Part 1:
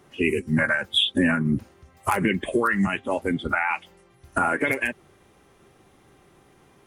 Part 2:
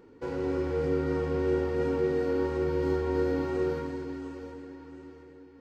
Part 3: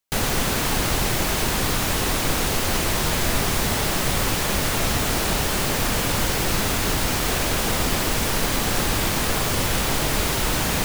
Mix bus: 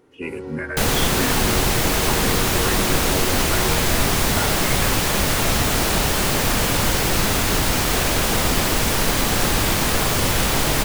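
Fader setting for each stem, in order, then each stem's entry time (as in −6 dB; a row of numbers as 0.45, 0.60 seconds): −8.0, −3.0, +3.0 decibels; 0.00, 0.00, 0.65 seconds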